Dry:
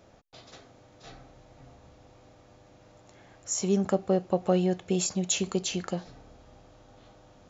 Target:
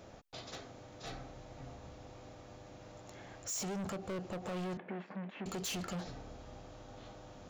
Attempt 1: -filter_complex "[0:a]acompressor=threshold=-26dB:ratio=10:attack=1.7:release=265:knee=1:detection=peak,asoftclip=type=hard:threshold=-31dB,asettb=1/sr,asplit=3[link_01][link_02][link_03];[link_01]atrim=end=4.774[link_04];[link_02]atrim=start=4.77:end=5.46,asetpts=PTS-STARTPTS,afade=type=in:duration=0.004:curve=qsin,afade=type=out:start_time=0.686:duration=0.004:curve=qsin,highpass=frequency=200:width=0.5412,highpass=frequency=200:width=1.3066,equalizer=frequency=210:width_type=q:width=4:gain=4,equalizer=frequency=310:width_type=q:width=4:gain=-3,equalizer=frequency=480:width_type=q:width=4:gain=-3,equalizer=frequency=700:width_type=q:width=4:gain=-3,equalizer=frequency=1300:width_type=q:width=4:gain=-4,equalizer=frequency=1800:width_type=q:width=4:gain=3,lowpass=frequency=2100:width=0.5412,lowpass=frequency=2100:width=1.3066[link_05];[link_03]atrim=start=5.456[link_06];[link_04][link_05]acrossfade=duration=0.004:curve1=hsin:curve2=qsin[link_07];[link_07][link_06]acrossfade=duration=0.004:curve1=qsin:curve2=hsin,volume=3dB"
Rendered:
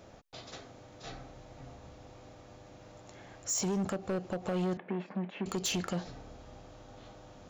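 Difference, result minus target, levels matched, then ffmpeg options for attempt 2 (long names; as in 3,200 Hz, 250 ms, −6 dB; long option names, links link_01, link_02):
hard clipping: distortion −7 dB
-filter_complex "[0:a]acompressor=threshold=-26dB:ratio=10:attack=1.7:release=265:knee=1:detection=peak,asoftclip=type=hard:threshold=-40dB,asettb=1/sr,asplit=3[link_01][link_02][link_03];[link_01]atrim=end=4.774[link_04];[link_02]atrim=start=4.77:end=5.46,asetpts=PTS-STARTPTS,afade=type=in:duration=0.004:curve=qsin,afade=type=out:start_time=0.686:duration=0.004:curve=qsin,highpass=frequency=200:width=0.5412,highpass=frequency=200:width=1.3066,equalizer=frequency=210:width_type=q:width=4:gain=4,equalizer=frequency=310:width_type=q:width=4:gain=-3,equalizer=frequency=480:width_type=q:width=4:gain=-3,equalizer=frequency=700:width_type=q:width=4:gain=-3,equalizer=frequency=1300:width_type=q:width=4:gain=-4,equalizer=frequency=1800:width_type=q:width=4:gain=3,lowpass=frequency=2100:width=0.5412,lowpass=frequency=2100:width=1.3066[link_05];[link_03]atrim=start=5.456[link_06];[link_04][link_05]acrossfade=duration=0.004:curve1=hsin:curve2=qsin[link_07];[link_07][link_06]acrossfade=duration=0.004:curve1=qsin:curve2=hsin,volume=3dB"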